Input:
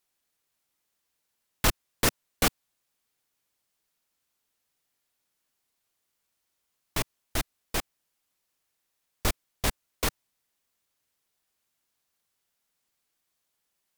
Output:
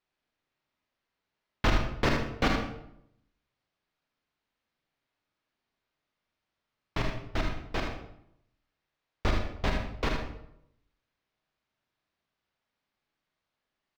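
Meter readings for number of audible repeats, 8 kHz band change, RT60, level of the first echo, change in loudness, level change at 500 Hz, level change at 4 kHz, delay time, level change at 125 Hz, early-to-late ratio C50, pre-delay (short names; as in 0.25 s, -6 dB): 1, -16.5 dB, 0.75 s, -7.0 dB, -1.5 dB, +2.0 dB, -4.5 dB, 77 ms, +3.5 dB, 2.5 dB, 39 ms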